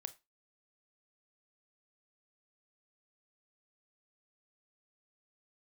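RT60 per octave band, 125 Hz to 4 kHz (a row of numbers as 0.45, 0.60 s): 0.20, 0.25, 0.20, 0.25, 0.25, 0.20 s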